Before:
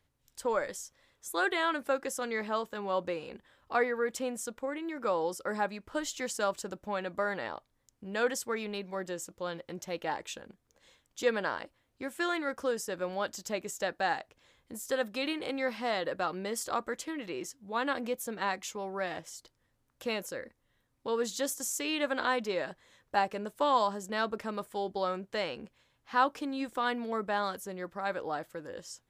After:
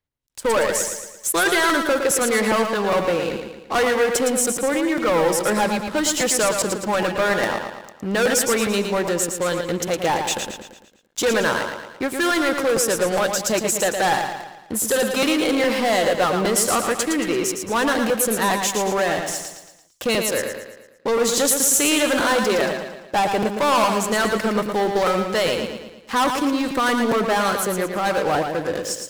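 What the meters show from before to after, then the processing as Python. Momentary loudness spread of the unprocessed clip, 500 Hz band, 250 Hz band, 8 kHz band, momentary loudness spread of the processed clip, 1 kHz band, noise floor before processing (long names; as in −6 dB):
11 LU, +13.5 dB, +15.0 dB, +19.0 dB, 8 LU, +11.0 dB, −76 dBFS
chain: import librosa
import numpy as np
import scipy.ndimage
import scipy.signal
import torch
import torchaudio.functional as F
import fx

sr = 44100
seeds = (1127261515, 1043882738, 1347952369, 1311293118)

p1 = fx.leveller(x, sr, passes=5)
p2 = p1 + fx.echo_feedback(p1, sr, ms=113, feedback_pct=49, wet_db=-6, dry=0)
p3 = fx.dynamic_eq(p2, sr, hz=9900.0, q=1.3, threshold_db=-39.0, ratio=4.0, max_db=5)
p4 = fx.buffer_crackle(p3, sr, first_s=0.87, period_s=0.41, block=256, kind='repeat')
p5 = fx.end_taper(p4, sr, db_per_s=320.0)
y = F.gain(torch.from_numpy(p5), -1.5).numpy()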